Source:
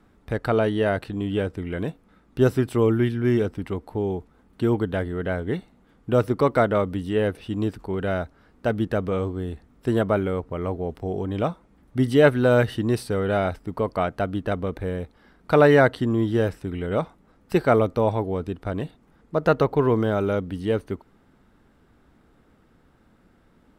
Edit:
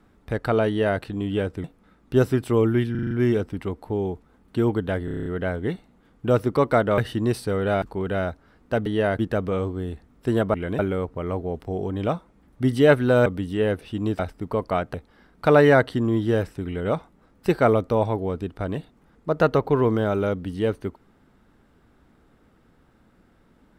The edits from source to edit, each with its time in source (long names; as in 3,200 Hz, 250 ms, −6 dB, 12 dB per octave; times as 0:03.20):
0:00.68–0:01.01: duplicate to 0:08.79
0:01.64–0:01.89: move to 0:10.14
0:03.16: stutter 0.04 s, 6 plays
0:05.10: stutter 0.03 s, 8 plays
0:06.82–0:07.75: swap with 0:12.61–0:13.45
0:14.20–0:15.00: remove